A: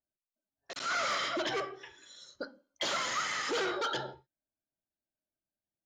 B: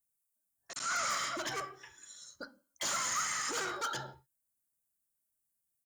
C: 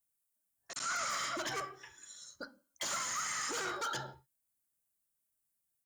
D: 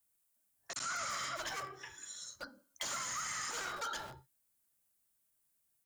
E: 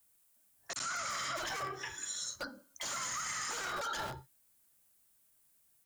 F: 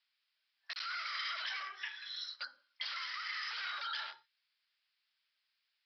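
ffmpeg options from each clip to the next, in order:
-af "firequalizer=gain_entry='entry(130,0);entry(410,-10);entry(1100,-1);entry(3400,-7);entry(8500,15)':delay=0.05:min_phase=1"
-af "alimiter=level_in=4.5dB:limit=-24dB:level=0:latency=1:release=20,volume=-4.5dB"
-filter_complex "[0:a]acrossover=split=130[a][b];[b]acompressor=threshold=-48dB:ratio=2[c];[a][c]amix=inputs=2:normalize=0,acrossover=split=500|5800[d][e][f];[d]aeval=exprs='(mod(422*val(0)+1,2)-1)/422':c=same[g];[g][e][f]amix=inputs=3:normalize=0,volume=5dB"
-af "alimiter=level_in=13.5dB:limit=-24dB:level=0:latency=1:release=17,volume=-13.5dB,volume=8dB"
-af "asuperpass=centerf=3900:order=4:qfactor=0.61,aresample=11025,aresample=44100,volume=3.5dB"

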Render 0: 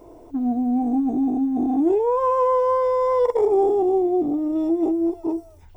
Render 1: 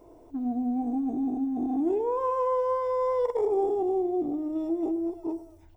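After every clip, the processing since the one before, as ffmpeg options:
-filter_complex "[0:a]asplit=2[a][b];[b]adelay=100,lowpass=f=2k:p=1,volume=-15dB,asplit=2[c][d];[d]adelay=100,lowpass=f=2k:p=1,volume=0.45,asplit=2[e][f];[f]adelay=100,lowpass=f=2k:p=1,volume=0.45,asplit=2[g][h];[h]adelay=100,lowpass=f=2k:p=1,volume=0.45[i];[a][c][e][g][i]amix=inputs=5:normalize=0,volume=-7.5dB"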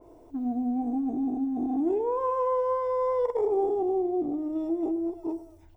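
-af "adynamicequalizer=threshold=0.00562:dfrequency=2500:dqfactor=0.7:tfrequency=2500:tqfactor=0.7:attack=5:release=100:ratio=0.375:range=2.5:mode=cutabove:tftype=highshelf"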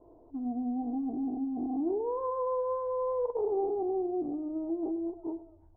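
-af "lowpass=f=1.1k:w=0.5412,lowpass=f=1.1k:w=1.3066,volume=-4.5dB"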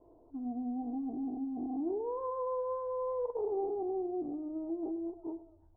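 -af "volume=-3.5dB" -ar 12000 -c:a libmp3lame -b:a 16k

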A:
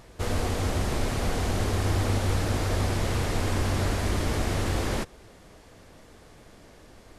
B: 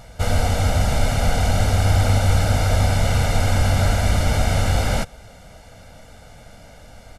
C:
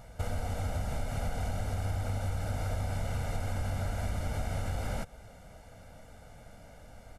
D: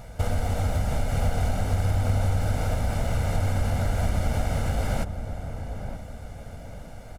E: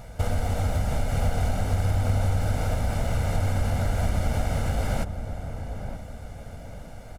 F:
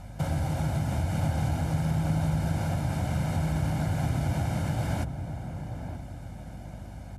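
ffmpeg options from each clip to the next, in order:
-af "aecho=1:1:1.4:0.78,volume=5dB"
-af "equalizer=f=4.2k:t=o:w=1.8:g=-6,acompressor=threshold=-22dB:ratio=6,volume=-7.5dB"
-filter_complex "[0:a]asplit=2[a][b];[b]acrusher=samples=25:mix=1:aa=0.000001:lfo=1:lforange=15:lforate=2.9,volume=-11.5dB[c];[a][c]amix=inputs=2:normalize=0,asplit=2[d][e];[e]adelay=923,lowpass=f=1k:p=1,volume=-8dB,asplit=2[f][g];[g]adelay=923,lowpass=f=1k:p=1,volume=0.4,asplit=2[h][i];[i]adelay=923,lowpass=f=1k:p=1,volume=0.4,asplit=2[j][k];[k]adelay=923,lowpass=f=1k:p=1,volume=0.4,asplit=2[l][m];[m]adelay=923,lowpass=f=1k:p=1,volume=0.4[n];[d][f][h][j][l][n]amix=inputs=6:normalize=0,volume=6.5dB"
-af anull
-af "afreqshift=62,aeval=exprs='val(0)+0.0112*(sin(2*PI*50*n/s)+sin(2*PI*2*50*n/s)/2+sin(2*PI*3*50*n/s)/3+sin(2*PI*4*50*n/s)/4+sin(2*PI*5*50*n/s)/5)':c=same,volume=-3.5dB" -ar 32000 -c:a libmp3lame -b:a 80k

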